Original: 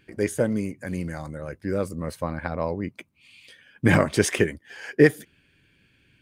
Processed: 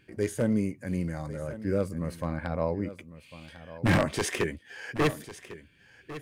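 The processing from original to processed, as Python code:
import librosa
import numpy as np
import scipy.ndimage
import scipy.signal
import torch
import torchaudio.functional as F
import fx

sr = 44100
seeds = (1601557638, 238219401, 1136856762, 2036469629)

y = 10.0 ** (-13.0 / 20.0) * (np.abs((x / 10.0 ** (-13.0 / 20.0) + 3.0) % 4.0 - 2.0) - 1.0)
y = y + 10.0 ** (-15.5 / 20.0) * np.pad(y, (int(1100 * sr / 1000.0), 0))[:len(y)]
y = fx.hpss(y, sr, part='harmonic', gain_db=8)
y = y * 10.0 ** (-7.5 / 20.0)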